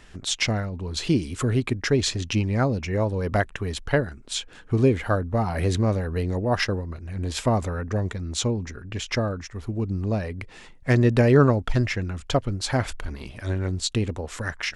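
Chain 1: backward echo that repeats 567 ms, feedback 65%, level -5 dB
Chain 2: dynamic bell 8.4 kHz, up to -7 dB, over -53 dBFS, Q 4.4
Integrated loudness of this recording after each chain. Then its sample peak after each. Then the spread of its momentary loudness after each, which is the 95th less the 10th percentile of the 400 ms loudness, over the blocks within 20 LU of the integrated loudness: -23.5 LUFS, -25.0 LUFS; -4.0 dBFS, -5.5 dBFS; 8 LU, 11 LU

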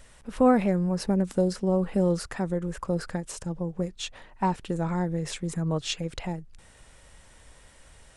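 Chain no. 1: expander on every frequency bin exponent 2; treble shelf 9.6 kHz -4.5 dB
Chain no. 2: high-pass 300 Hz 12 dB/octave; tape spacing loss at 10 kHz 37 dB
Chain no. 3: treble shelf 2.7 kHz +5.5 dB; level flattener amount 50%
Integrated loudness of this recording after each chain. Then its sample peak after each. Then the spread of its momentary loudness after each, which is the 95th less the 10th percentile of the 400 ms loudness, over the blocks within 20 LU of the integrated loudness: -30.5 LUFS, -33.0 LUFS, -24.0 LUFS; -11.0 dBFS, -12.0 dBFS, -7.0 dBFS; 17 LU, 15 LU, 12 LU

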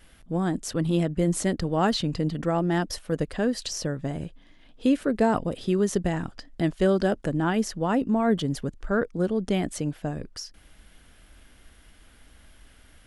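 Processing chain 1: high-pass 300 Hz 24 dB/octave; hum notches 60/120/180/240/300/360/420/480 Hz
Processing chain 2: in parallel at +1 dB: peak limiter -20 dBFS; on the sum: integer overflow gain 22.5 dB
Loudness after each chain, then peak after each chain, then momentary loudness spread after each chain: -29.5 LUFS, -27.5 LUFS; -11.0 dBFS, -22.5 dBFS; 11 LU, 5 LU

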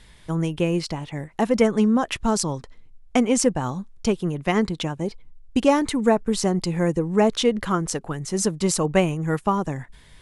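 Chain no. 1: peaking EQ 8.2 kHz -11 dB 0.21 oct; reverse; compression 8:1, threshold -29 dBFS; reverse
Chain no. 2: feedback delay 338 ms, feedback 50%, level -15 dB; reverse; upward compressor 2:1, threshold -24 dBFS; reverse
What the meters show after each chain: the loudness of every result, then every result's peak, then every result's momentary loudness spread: -34.0 LUFS, -23.0 LUFS; -16.0 dBFS, -4.5 dBFS; 5 LU, 10 LU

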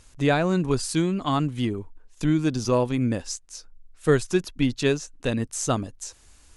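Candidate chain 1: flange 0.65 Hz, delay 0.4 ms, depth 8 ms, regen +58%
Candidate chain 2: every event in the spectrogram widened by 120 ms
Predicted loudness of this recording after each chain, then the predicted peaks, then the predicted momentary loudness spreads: -29.0 LUFS, -20.5 LUFS; -12.0 dBFS, -3.5 dBFS; 13 LU, 13 LU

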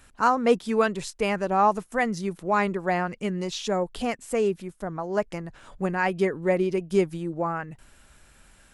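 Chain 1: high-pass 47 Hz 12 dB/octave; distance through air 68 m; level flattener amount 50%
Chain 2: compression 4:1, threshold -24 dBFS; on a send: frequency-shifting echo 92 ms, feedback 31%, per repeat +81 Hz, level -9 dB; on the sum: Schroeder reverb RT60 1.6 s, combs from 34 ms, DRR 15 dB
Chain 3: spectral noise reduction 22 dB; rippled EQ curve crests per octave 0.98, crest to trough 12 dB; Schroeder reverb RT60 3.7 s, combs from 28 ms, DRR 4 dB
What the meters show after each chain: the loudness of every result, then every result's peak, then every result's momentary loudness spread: -22.5 LUFS, -29.5 LUFS, -24.0 LUFS; -7.5 dBFS, -14.0 dBFS, -3.0 dBFS; 10 LU, 6 LU, 14 LU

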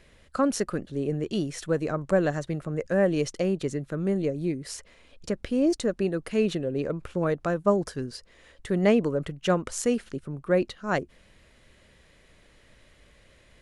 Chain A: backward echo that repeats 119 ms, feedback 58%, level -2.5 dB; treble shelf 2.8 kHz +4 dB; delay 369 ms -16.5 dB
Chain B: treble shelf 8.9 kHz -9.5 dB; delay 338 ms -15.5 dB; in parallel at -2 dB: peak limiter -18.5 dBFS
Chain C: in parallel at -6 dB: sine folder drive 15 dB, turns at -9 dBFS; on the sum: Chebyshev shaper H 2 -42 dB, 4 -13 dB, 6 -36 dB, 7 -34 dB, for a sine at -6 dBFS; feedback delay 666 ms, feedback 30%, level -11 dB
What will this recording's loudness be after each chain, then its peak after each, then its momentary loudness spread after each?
-24.5 LUFS, -23.5 LUFS, -18.5 LUFS; -7.0 dBFS, -7.0 dBFS, -4.5 dBFS; 10 LU, 10 LU, 10 LU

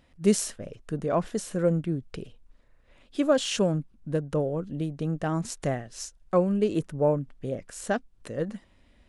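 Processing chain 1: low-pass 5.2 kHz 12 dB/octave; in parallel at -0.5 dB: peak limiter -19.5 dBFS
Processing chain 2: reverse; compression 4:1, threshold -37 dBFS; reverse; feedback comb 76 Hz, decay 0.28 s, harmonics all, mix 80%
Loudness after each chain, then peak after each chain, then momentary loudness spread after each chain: -24.0 LUFS, -46.0 LUFS; -7.0 dBFS, -27.5 dBFS; 13 LU, 6 LU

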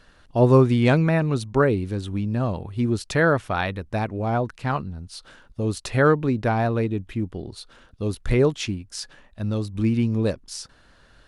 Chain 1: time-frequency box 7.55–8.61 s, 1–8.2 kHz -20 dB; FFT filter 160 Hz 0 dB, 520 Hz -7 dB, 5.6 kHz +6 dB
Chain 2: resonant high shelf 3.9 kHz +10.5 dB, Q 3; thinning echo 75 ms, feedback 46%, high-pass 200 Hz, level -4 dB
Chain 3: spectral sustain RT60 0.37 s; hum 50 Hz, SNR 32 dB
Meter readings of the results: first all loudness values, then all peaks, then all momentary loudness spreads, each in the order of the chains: -25.0 LUFS, -21.5 LUFS, -22.5 LUFS; -6.0 dBFS, -1.5 dBFS, -4.5 dBFS; 13 LU, 12 LU, 16 LU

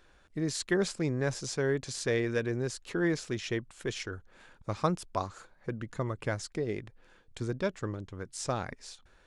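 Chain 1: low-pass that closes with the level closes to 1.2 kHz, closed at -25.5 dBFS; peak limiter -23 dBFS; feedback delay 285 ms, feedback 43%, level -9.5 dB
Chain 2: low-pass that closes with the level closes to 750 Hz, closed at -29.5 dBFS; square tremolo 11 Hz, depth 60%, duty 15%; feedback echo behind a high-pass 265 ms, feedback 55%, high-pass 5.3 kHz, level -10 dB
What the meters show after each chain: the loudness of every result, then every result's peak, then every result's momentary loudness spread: -36.0 LUFS, -40.5 LUFS; -20.0 dBFS, -19.5 dBFS; 10 LU, 13 LU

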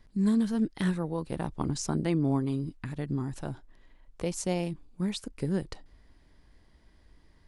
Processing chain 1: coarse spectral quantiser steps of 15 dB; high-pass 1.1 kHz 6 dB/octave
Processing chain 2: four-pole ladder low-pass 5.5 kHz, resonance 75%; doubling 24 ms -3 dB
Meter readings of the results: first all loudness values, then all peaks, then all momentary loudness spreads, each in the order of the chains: -41.5 LUFS, -41.5 LUFS; -20.0 dBFS, -24.5 dBFS; 12 LU, 11 LU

